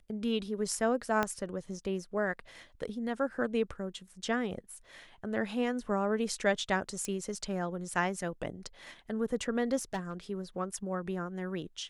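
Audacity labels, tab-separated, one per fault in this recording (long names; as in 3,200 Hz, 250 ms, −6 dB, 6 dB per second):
1.230000	1.230000	click −15 dBFS
7.050000	7.050000	click −22 dBFS
9.760000	10.130000	clipping −29.5 dBFS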